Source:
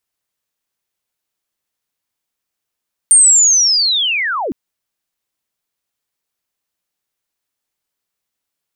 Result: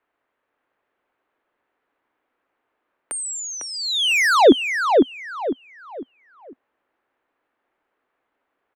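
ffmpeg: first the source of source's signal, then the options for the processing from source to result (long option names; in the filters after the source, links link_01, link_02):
-f lavfi -i "aevalsrc='pow(10,(-4-13.5*t/1.41)/20)*sin(2*PI*(8900*t-8690*t*t/(2*1.41)))':duration=1.41:sample_rate=44100"
-filter_complex "[0:a]firequalizer=gain_entry='entry(180,0);entry(260,13);entry(520,14);entry(1600,12);entry(5300,-20)':delay=0.05:min_phase=1,acrossover=split=220|560|5400[link_01][link_02][link_03][link_04];[link_03]asoftclip=type=tanh:threshold=-17dB[link_05];[link_01][link_02][link_05][link_04]amix=inputs=4:normalize=0,asplit=2[link_06][link_07];[link_07]adelay=502,lowpass=frequency=2500:poles=1,volume=-3.5dB,asplit=2[link_08][link_09];[link_09]adelay=502,lowpass=frequency=2500:poles=1,volume=0.34,asplit=2[link_10][link_11];[link_11]adelay=502,lowpass=frequency=2500:poles=1,volume=0.34,asplit=2[link_12][link_13];[link_13]adelay=502,lowpass=frequency=2500:poles=1,volume=0.34[link_14];[link_06][link_08][link_10][link_12][link_14]amix=inputs=5:normalize=0"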